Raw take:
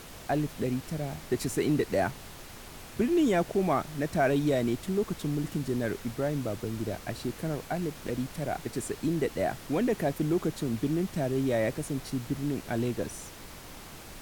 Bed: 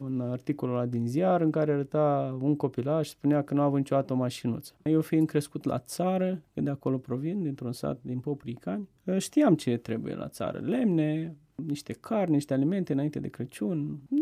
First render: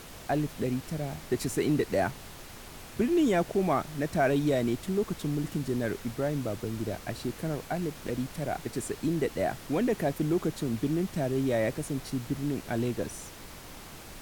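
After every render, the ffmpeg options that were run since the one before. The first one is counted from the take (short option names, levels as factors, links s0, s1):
-af anull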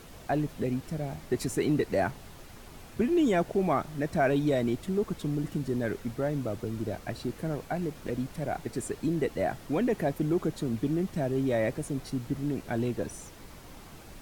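-af "afftdn=nr=6:nf=-46"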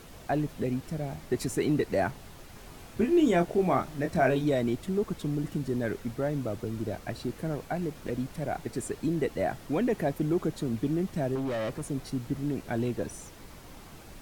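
-filter_complex "[0:a]asettb=1/sr,asplit=3[s0][s1][s2];[s0]atrim=end=2.534[s3];[s1]atrim=start=2.53:end=4.44,asetpts=PTS-STARTPTS,afade=t=in:d=0.004:c=qsin,afade=t=out:st=1.906:d=0.004:c=qsin,asplit=2[s4][s5];[s5]adelay=23,volume=0.501[s6];[s4][s6]amix=inputs=2:normalize=0,atrim=end_sample=84231[s7];[s2]atrim=start=4.436[s8];[s3][s7]acrossfade=d=0.004:c1=hsin:c2=qsin[s9];[s9][s8]acrossfade=d=0.004:c1=qsin:c2=hsin,asettb=1/sr,asplit=3[s10][s11][s12];[s10]atrim=end=11.354[s13];[s11]atrim=start=11.35:end=11.88,asetpts=PTS-STARTPTS,afade=t=in:d=0.004:c=qsin,afade=t=out:st=0.526:d=0.004:c=qsin,volume=28.2,asoftclip=hard,volume=0.0355[s14];[s12]atrim=start=11.876[s15];[s13][s14]acrossfade=d=0.004:c1=hsin:c2=qsin[s16];[s16][s15]acrossfade=d=0.004:c1=qsin:c2=hsin"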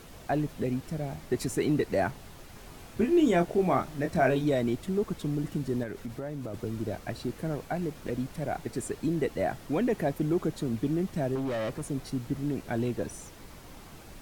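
-filter_complex "[0:a]asettb=1/sr,asplit=3[s0][s1][s2];[s0]atrim=end=5.834[s3];[s1]atrim=start=5.83:end=6.54,asetpts=PTS-STARTPTS,afade=t=in:d=0.004:c=qsin,afade=t=out:st=0.706:d=0.004:c=qsin,acompressor=threshold=0.0251:ratio=6:attack=3.2:release=140:knee=1:detection=peak[s4];[s2]atrim=start=6.536[s5];[s3][s4]acrossfade=d=0.004:c1=hsin:c2=qsin[s6];[s6][s5]acrossfade=d=0.004:c1=qsin:c2=hsin"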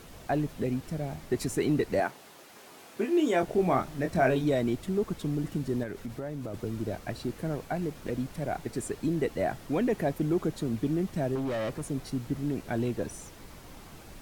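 -filter_complex "[0:a]asettb=1/sr,asplit=3[s0][s1][s2];[s0]atrim=end=2.004[s3];[s1]atrim=start=2:end=3.43,asetpts=PTS-STARTPTS,afade=t=in:d=0.004:c=qsin,afade=t=out:st=1.426:d=0.004:c=qsin,highpass=310[s4];[s2]atrim=start=3.426[s5];[s3][s4]acrossfade=d=0.004:c1=hsin:c2=qsin[s6];[s6][s5]acrossfade=d=0.004:c1=qsin:c2=hsin"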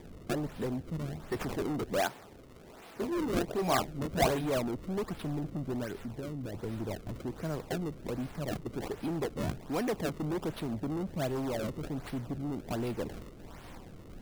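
-filter_complex "[0:a]acrossover=split=610[s0][s1];[s0]asoftclip=type=tanh:threshold=0.0282[s2];[s1]acrusher=samples=31:mix=1:aa=0.000001:lfo=1:lforange=49.6:lforate=1.3[s3];[s2][s3]amix=inputs=2:normalize=0"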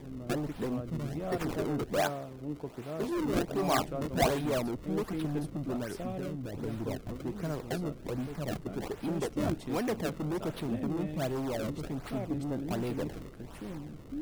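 -filter_complex "[1:a]volume=0.251[s0];[0:a][s0]amix=inputs=2:normalize=0"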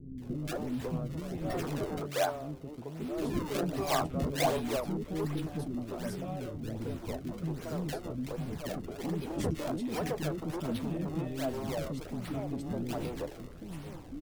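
-filter_complex "[0:a]asplit=2[s0][s1];[s1]adelay=12,volume=0.266[s2];[s0][s2]amix=inputs=2:normalize=0,acrossover=split=340|1500[s3][s4][s5];[s5]adelay=180[s6];[s4]adelay=220[s7];[s3][s7][s6]amix=inputs=3:normalize=0"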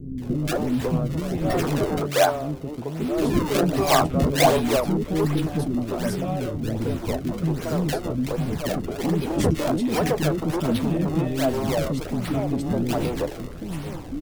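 -af "volume=3.76"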